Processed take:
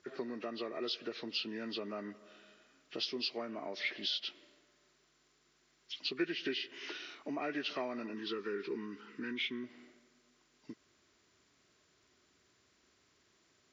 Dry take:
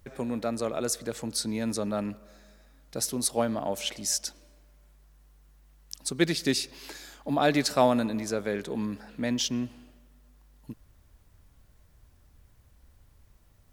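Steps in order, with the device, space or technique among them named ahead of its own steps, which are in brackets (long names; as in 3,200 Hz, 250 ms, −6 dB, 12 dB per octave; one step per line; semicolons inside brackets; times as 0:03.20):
0:08.14–0:09.64: Chebyshev band-stop filter 430–970 Hz, order 2
hearing aid with frequency lowering (hearing-aid frequency compression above 1,100 Hz 1.5 to 1; downward compressor 3 to 1, threshold −35 dBFS, peak gain reduction 13.5 dB; loudspeaker in its box 330–6,100 Hz, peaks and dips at 370 Hz +7 dB, 530 Hz −8 dB, 830 Hz −9 dB, 2,000 Hz +4 dB)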